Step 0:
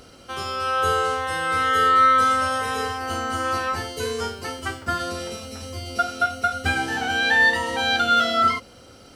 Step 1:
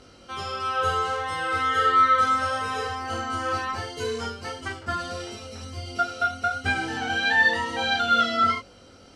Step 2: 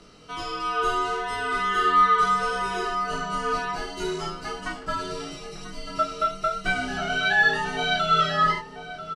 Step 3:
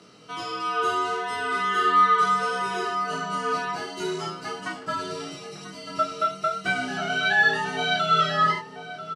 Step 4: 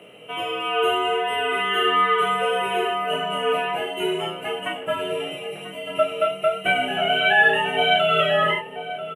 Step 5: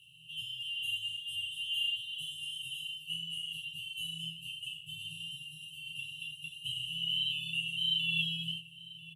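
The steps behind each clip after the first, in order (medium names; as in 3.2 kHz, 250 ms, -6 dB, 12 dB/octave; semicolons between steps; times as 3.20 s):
low-pass 7.5 kHz 12 dB/octave; chorus 1.5 Hz, delay 20 ms, depth 2.1 ms
frequency shift -69 Hz; echo from a far wall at 170 m, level -10 dB
high-pass 110 Hz 24 dB/octave
FFT filter 290 Hz 0 dB, 570 Hz +13 dB, 1.3 kHz -3 dB, 2.9 kHz +14 dB, 4.7 kHz -29 dB, 11 kHz +13 dB
de-hum 49.47 Hz, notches 37; FFT band-reject 170–2600 Hz; trim -6 dB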